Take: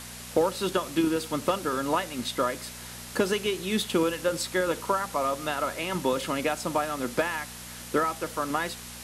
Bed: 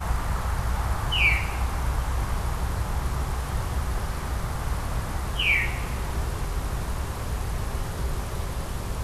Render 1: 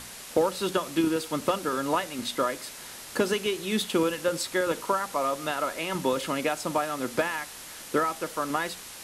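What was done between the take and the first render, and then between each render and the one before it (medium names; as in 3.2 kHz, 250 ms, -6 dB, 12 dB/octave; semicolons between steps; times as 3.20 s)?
de-hum 60 Hz, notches 4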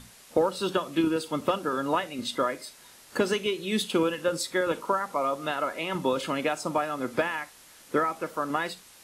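noise print and reduce 10 dB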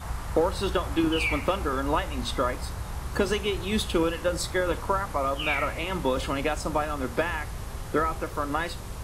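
add bed -7 dB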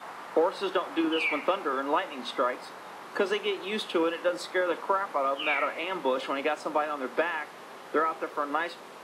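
high-pass 180 Hz 24 dB/octave; three-band isolator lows -18 dB, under 270 Hz, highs -13 dB, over 4 kHz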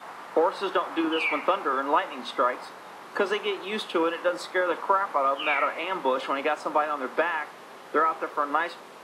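dynamic bell 1.1 kHz, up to +5 dB, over -40 dBFS, Q 0.95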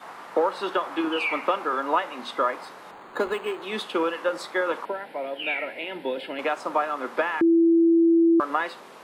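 2.91–3.62 s: decimation joined by straight lines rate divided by 8×; 4.85–6.39 s: static phaser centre 2.8 kHz, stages 4; 7.41–8.40 s: bleep 333 Hz -14.5 dBFS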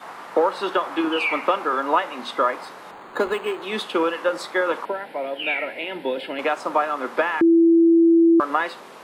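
trim +3.5 dB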